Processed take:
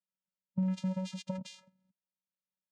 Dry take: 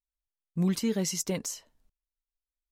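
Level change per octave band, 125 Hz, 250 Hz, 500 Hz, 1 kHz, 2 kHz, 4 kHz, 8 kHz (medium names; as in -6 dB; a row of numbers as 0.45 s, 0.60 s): -4.0 dB, -4.5 dB, -11.0 dB, -2.5 dB, -10.5 dB, -11.0 dB, -21.5 dB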